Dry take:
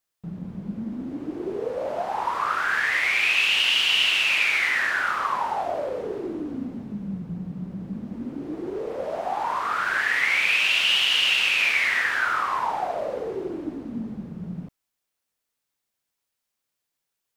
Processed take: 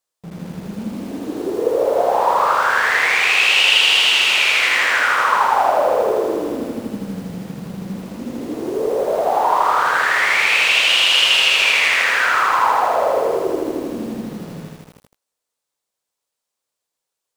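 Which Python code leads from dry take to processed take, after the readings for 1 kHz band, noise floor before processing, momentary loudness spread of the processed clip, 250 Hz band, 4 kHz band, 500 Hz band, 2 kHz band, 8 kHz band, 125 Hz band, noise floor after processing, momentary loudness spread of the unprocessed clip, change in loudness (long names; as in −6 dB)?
+10.5 dB, −82 dBFS, 18 LU, +5.5 dB, +7.0 dB, +12.0 dB, +6.5 dB, +10.0 dB, +3.5 dB, −82 dBFS, 16 LU, +8.0 dB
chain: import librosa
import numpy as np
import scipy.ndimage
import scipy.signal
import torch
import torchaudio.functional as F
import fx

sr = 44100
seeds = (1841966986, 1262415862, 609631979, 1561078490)

p1 = fx.graphic_eq_10(x, sr, hz=(500, 1000, 4000, 8000), db=(9, 6, 4, 7))
p2 = fx.quant_dither(p1, sr, seeds[0], bits=6, dither='none')
p3 = p1 + (p2 * 10.0 ** (-5.0 / 20.0))
p4 = fx.echo_crushed(p3, sr, ms=80, feedback_pct=80, bits=7, wet_db=-3)
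y = p4 * 10.0 ** (-4.0 / 20.0)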